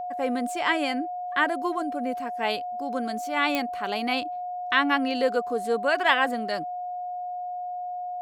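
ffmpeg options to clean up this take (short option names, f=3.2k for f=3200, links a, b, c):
-af "adeclick=t=4,bandreject=f=720:w=30"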